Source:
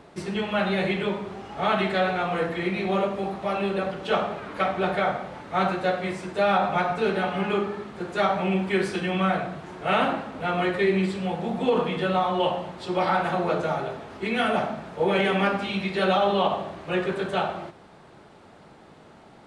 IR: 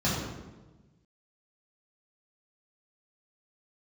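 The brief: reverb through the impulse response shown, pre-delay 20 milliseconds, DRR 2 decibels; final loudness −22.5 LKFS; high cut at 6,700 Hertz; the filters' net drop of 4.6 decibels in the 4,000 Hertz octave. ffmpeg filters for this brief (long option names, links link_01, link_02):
-filter_complex "[0:a]lowpass=6700,equalizer=frequency=4000:width_type=o:gain=-6,asplit=2[link_01][link_02];[1:a]atrim=start_sample=2205,adelay=20[link_03];[link_02][link_03]afir=irnorm=-1:irlink=0,volume=-13.5dB[link_04];[link_01][link_04]amix=inputs=2:normalize=0,volume=-3dB"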